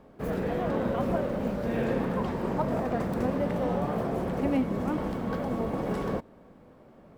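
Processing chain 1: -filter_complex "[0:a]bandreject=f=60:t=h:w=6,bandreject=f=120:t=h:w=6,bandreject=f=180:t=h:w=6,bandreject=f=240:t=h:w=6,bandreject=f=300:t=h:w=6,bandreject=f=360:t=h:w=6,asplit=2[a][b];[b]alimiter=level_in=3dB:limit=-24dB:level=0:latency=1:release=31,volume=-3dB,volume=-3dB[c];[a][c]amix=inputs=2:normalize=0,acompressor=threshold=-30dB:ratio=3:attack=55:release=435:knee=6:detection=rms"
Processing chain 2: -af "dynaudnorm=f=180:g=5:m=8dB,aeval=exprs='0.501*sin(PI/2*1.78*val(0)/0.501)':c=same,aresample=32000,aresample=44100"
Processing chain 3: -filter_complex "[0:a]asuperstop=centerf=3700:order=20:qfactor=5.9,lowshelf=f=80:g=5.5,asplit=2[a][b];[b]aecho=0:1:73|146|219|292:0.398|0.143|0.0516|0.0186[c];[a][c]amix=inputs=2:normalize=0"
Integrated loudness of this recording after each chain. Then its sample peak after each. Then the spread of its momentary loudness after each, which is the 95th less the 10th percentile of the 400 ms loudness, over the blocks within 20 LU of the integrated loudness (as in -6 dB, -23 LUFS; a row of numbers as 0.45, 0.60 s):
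-32.0, -14.0, -28.5 LUFS; -20.0, -6.0, -14.0 dBFS; 4, 3, 4 LU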